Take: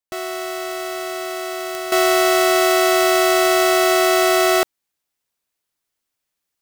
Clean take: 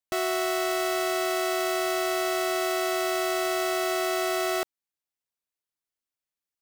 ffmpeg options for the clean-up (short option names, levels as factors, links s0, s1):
-af "adeclick=t=4,asetnsamples=n=441:p=0,asendcmd='1.92 volume volume -11.5dB',volume=1"